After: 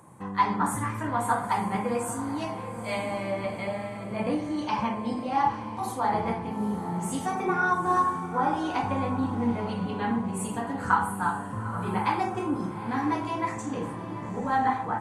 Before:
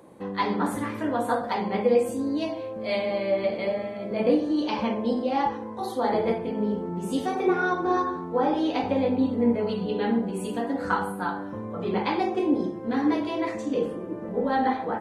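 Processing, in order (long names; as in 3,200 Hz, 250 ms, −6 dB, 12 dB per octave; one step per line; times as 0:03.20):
octave-band graphic EQ 125/250/500/1,000/4,000/8,000 Hz +10/−5/−11/+7/−9/+10 dB
feedback delay with all-pass diffusion 858 ms, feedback 42%, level −12 dB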